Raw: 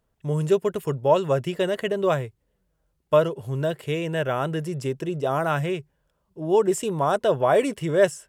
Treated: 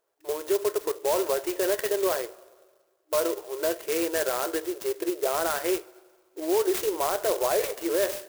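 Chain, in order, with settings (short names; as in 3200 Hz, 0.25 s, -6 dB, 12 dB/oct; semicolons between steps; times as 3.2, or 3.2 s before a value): two-slope reverb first 0.23 s, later 1.6 s, from -21 dB, DRR 10.5 dB; dynamic EQ 1800 Hz, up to +3 dB, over -37 dBFS, Q 1.7; limiter -18 dBFS, peak gain reduction 11.5 dB; FFT band-pass 310–9800 Hz; clock jitter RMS 0.084 ms; gain +1.5 dB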